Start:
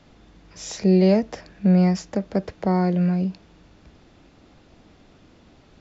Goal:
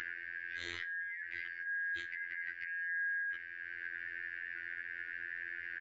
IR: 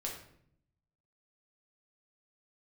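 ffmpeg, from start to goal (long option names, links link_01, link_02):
-filter_complex "[0:a]afftfilt=real='real(if(lt(b,272),68*(eq(floor(b/68),0)*2+eq(floor(b/68),1)*0+eq(floor(b/68),2)*3+eq(floor(b/68),3)*1)+mod(b,68),b),0)':imag='imag(if(lt(b,272),68*(eq(floor(b/68),0)*2+eq(floor(b/68),1)*0+eq(floor(b/68),2)*3+eq(floor(b/68),3)*1)+mod(b,68),b),0)':win_size=2048:overlap=0.75,firequalizer=gain_entry='entry(120,0);entry(200,-23);entry(310,7);entry(520,-11);entry(850,-21);entry(1700,9);entry(5400,-22)':delay=0.05:min_phase=1,acompressor=mode=upward:threshold=-34dB:ratio=2.5,alimiter=level_in=7dB:limit=-24dB:level=0:latency=1:release=15,volume=-7dB,acrossover=split=450[link_01][link_02];[link_02]acompressor=threshold=-53dB:ratio=1.5[link_03];[link_01][link_03]amix=inputs=2:normalize=0,afftfilt=real='hypot(re,im)*cos(PI*b)':imag='0':win_size=2048:overlap=0.75,asplit=2[link_04][link_05];[link_05]adelay=63,lowpass=frequency=4800:poles=1,volume=-19.5dB,asplit=2[link_06][link_07];[link_07]adelay=63,lowpass=frequency=4800:poles=1,volume=0.52,asplit=2[link_08][link_09];[link_09]adelay=63,lowpass=frequency=4800:poles=1,volume=0.52,asplit=2[link_10][link_11];[link_11]adelay=63,lowpass=frequency=4800:poles=1,volume=0.52[link_12];[link_06][link_08][link_10][link_12]amix=inputs=4:normalize=0[link_13];[link_04][link_13]amix=inputs=2:normalize=0,volume=6.5dB"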